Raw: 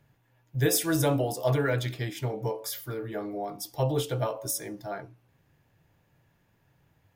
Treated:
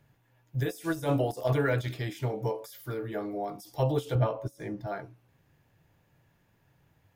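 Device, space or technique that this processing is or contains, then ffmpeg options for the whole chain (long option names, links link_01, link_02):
de-esser from a sidechain: -filter_complex "[0:a]asplit=2[link_01][link_02];[link_02]highpass=frequency=4100:width=0.5412,highpass=frequency=4100:width=1.3066,apad=whole_len=315341[link_03];[link_01][link_03]sidechaincompress=threshold=-45dB:ratio=8:attack=0.69:release=29,asettb=1/sr,asplit=3[link_04][link_05][link_06];[link_04]atrim=end=4.154[link_07];[link_05]atrim=start=4.15:end=4.87,asetpts=PTS-STARTPTS,afade=type=in:duration=0.004:curve=qsin,afade=type=out:start_time=0.716:duration=0.004:curve=qsin,bass=frequency=250:gain=7,treble=frequency=4000:gain=-12[link_08];[link_06]atrim=start=4.866[link_09];[link_07][link_08]acrossfade=duration=0.004:curve1=hsin:curve2=qsin[link_10];[link_10][link_09]acrossfade=duration=0.004:curve1=qsin:curve2=hsin"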